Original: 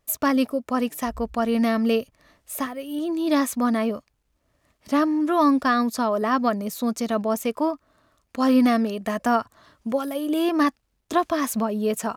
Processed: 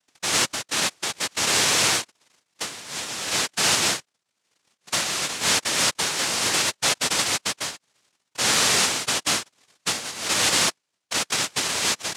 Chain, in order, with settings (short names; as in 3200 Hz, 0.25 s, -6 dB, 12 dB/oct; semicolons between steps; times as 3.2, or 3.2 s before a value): low-pass sweep 190 Hz -> 2100 Hz, 10.17–12.13; limiter -16.5 dBFS, peak gain reduction 10.5 dB; noise vocoder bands 1